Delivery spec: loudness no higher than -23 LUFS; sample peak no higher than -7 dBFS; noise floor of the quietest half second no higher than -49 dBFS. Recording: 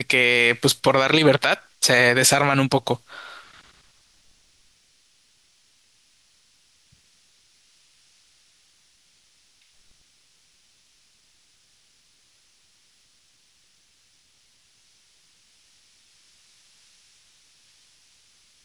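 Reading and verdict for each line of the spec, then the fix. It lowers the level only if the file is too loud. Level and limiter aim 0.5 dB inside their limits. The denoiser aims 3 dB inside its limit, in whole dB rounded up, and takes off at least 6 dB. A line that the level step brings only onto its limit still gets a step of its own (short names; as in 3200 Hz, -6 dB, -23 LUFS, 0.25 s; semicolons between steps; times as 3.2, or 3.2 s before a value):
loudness -18.0 LUFS: fail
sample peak -5.0 dBFS: fail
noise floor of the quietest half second -61 dBFS: OK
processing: gain -5.5 dB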